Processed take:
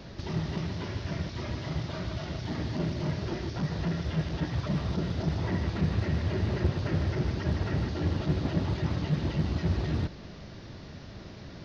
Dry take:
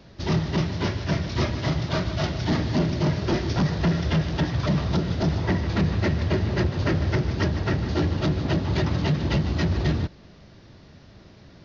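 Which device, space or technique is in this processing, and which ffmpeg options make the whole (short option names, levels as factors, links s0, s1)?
de-esser from a sidechain: -filter_complex "[0:a]asplit=2[s0][s1];[s1]highpass=4200,apad=whole_len=513611[s2];[s0][s2]sidechaincompress=threshold=0.00158:ratio=5:attack=2:release=24,volume=1.68"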